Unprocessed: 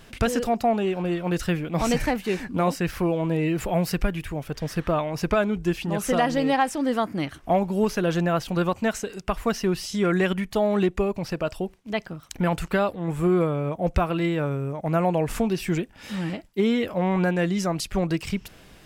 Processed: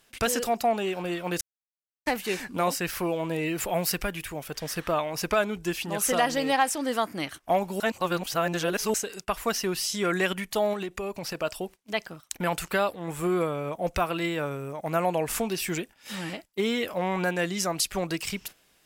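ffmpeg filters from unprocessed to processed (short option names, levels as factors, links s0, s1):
-filter_complex "[0:a]asettb=1/sr,asplit=3[s0][s1][s2];[s0]atrim=end=10.734[s3];[s1]atrim=start=10.73:end=11.35,asetpts=PTS-STARTPTS,afade=t=in:d=0.004:c=qsin,afade=t=out:st=0.616:d=0.004:c=qsin,acompressor=threshold=0.0708:ratio=10:attack=3.2:release=140:knee=1:detection=peak[s4];[s2]atrim=start=11.346[s5];[s3][s4]acrossfade=d=0.004:c1=hsin:c2=qsin[s6];[s6][s5]acrossfade=d=0.004:c1=qsin:c2=hsin,asplit=5[s7][s8][s9][s10][s11];[s7]atrim=end=1.41,asetpts=PTS-STARTPTS,afade=t=out:st=1.406:d=0.004:c=hsin[s12];[s8]atrim=start=1.41:end=2.06,asetpts=PTS-STARTPTS,volume=0[s13];[s9]atrim=start=2.06:end=7.802,asetpts=PTS-STARTPTS,afade=t=in:d=0.004:c=hsin[s14];[s10]atrim=start=7.798:end=8.942,asetpts=PTS-STARTPTS,areverse[s15];[s11]atrim=start=8.938[s16];[s12][s13][s14]concat=n=3:v=0:a=1[s17];[s17][s15]acrossfade=d=0.004:c1=hsin:c2=hsin[s18];[s18][s16]acrossfade=d=0.004:c1=hsin:c2=hsin,aemphasis=mode=production:type=cd,agate=range=0.224:threshold=0.0126:ratio=16:detection=peak,lowshelf=f=270:g=-12"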